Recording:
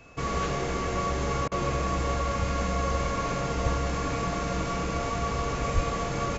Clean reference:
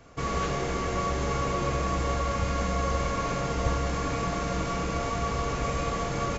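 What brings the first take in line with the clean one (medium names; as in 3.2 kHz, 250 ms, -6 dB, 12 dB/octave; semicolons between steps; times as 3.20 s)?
band-stop 2.6 kHz, Q 30; 5.74–5.86 s: high-pass 140 Hz 24 dB/octave; interpolate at 1.48 s, 35 ms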